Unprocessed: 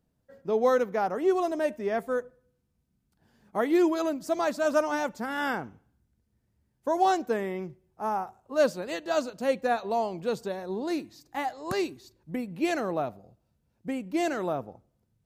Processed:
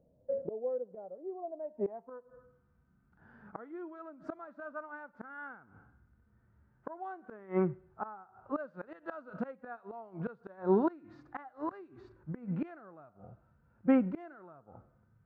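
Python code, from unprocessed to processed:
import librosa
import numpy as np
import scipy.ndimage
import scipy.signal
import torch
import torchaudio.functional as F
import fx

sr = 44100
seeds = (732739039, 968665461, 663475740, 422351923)

y = fx.filter_sweep_lowpass(x, sr, from_hz=570.0, to_hz=1400.0, start_s=1.26, end_s=2.7, q=4.5)
y = fx.gate_flip(y, sr, shuts_db=-22.0, range_db=-29)
y = fx.hpss(y, sr, part='percussive', gain_db=-12)
y = y * 10.0 ** (7.0 / 20.0)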